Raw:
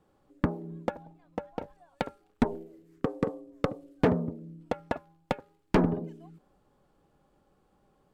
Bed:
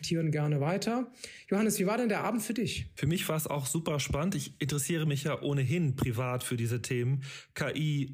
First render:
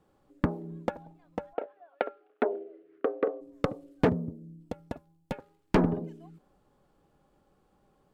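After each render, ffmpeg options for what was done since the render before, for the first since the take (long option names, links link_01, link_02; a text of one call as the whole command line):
ffmpeg -i in.wav -filter_complex "[0:a]asplit=3[link_01][link_02][link_03];[link_01]afade=type=out:start_time=1.53:duration=0.02[link_04];[link_02]highpass=frequency=320:width=0.5412,highpass=frequency=320:width=1.3066,equalizer=frequency=420:width_type=q:width=4:gain=6,equalizer=frequency=650:width_type=q:width=4:gain=8,equalizer=frequency=930:width_type=q:width=4:gain=-6,equalizer=frequency=1400:width_type=q:width=4:gain=5,lowpass=frequency=3000:width=0.5412,lowpass=frequency=3000:width=1.3066,afade=type=in:start_time=1.53:duration=0.02,afade=type=out:start_time=3.4:duration=0.02[link_05];[link_03]afade=type=in:start_time=3.4:duration=0.02[link_06];[link_04][link_05][link_06]amix=inputs=3:normalize=0,asettb=1/sr,asplit=3[link_07][link_08][link_09];[link_07]atrim=end=4.094[link_10];[link_08]atrim=start=4.09:end=5.32,asetpts=PTS-STARTPTS,afade=type=in:duration=0.004:curve=qsin,afade=type=out:start_time=1.226:duration=0.004:curve=qsin,equalizer=frequency=1400:width=0.35:gain=-13[link_11];[link_09]atrim=start=5.316[link_12];[link_10][link_11]acrossfade=duration=0.004:curve1=hsin:curve2=qsin[link_13];[link_13][link_12]acrossfade=duration=0.004:curve1=qsin:curve2=hsin" out.wav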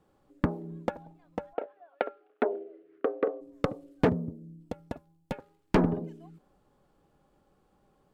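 ffmpeg -i in.wav -af anull out.wav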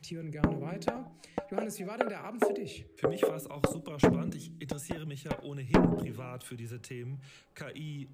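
ffmpeg -i in.wav -i bed.wav -filter_complex "[1:a]volume=-10.5dB[link_01];[0:a][link_01]amix=inputs=2:normalize=0" out.wav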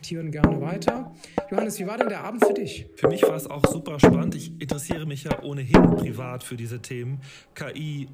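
ffmpeg -i in.wav -af "volume=9.5dB,alimiter=limit=-3dB:level=0:latency=1" out.wav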